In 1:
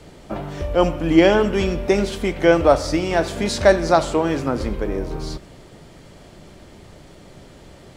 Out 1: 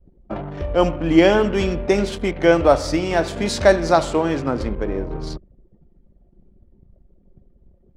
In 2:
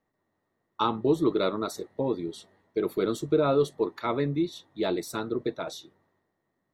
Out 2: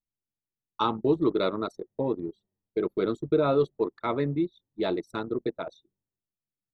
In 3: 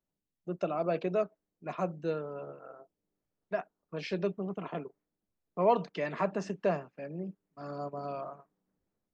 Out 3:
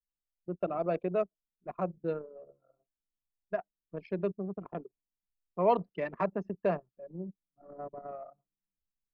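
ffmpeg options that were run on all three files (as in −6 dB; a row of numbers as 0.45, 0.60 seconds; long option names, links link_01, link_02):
-af "anlmdn=10"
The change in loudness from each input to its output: 0.0, 0.0, 0.0 LU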